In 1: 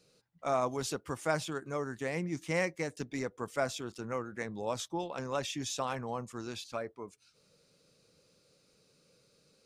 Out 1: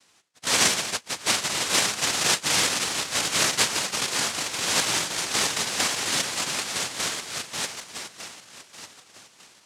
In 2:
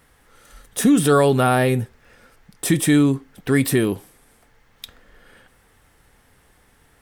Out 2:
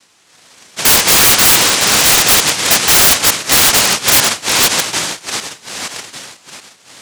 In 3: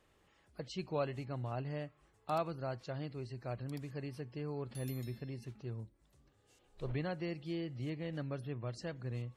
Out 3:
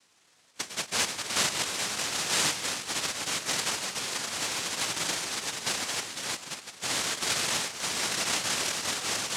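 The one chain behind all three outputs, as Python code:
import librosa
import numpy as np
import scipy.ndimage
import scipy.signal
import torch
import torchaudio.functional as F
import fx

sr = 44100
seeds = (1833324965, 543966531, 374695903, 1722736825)

y = fx.reverse_delay_fb(x, sr, ms=600, feedback_pct=46, wet_db=0)
y = fx.noise_vocoder(y, sr, seeds[0], bands=1)
y = (np.mod(10.0 ** (9.5 / 20.0) * y + 1.0, 2.0) - 1.0) / 10.0 ** (9.5 / 20.0)
y = F.gain(torch.from_numpy(y), 7.0).numpy()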